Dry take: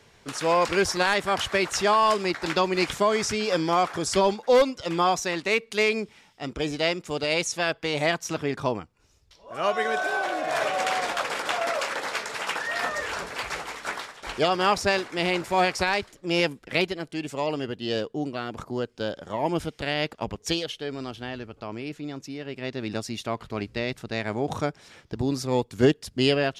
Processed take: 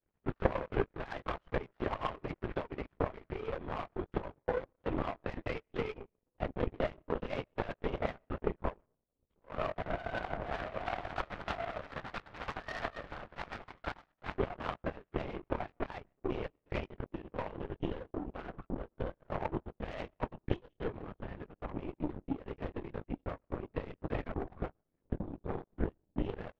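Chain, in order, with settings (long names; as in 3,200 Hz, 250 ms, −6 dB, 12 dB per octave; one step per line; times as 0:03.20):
low-pass filter 1,600 Hz 12 dB per octave
low-shelf EQ 290 Hz +8 dB
mains-hum notches 50/100/150/200 Hz
transient designer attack +8 dB, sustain −12 dB
downward compressor 12 to 1, threshold −25 dBFS, peak gain reduction 21.5 dB
chorus effect 0.41 Hz, delay 17.5 ms, depth 3.6 ms
linear-prediction vocoder at 8 kHz whisper
delay with a low-pass on its return 889 ms, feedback 67%, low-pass 420 Hz, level −23 dB
on a send at −23.5 dB: convolution reverb RT60 0.70 s, pre-delay 85 ms
on the sum: power curve on the samples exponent 2
level +6 dB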